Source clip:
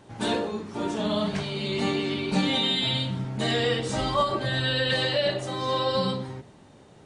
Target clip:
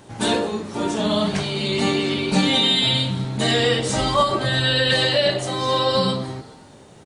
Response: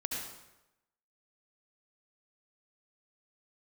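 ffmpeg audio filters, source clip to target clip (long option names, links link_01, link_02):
-filter_complex "[0:a]highshelf=frequency=6700:gain=9,asplit=2[link_01][link_02];[link_02]asplit=3[link_03][link_04][link_05];[link_03]adelay=214,afreqshift=130,volume=-21.5dB[link_06];[link_04]adelay=428,afreqshift=260,volume=-29.2dB[link_07];[link_05]adelay=642,afreqshift=390,volume=-37dB[link_08];[link_06][link_07][link_08]amix=inputs=3:normalize=0[link_09];[link_01][link_09]amix=inputs=2:normalize=0,volume=5.5dB"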